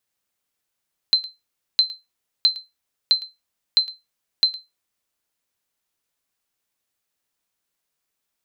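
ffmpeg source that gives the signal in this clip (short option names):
-f lavfi -i "aevalsrc='0.422*(sin(2*PI*4090*mod(t,0.66))*exp(-6.91*mod(t,0.66)/0.2)+0.106*sin(2*PI*4090*max(mod(t,0.66)-0.11,0))*exp(-6.91*max(mod(t,0.66)-0.11,0)/0.2))':d=3.96:s=44100"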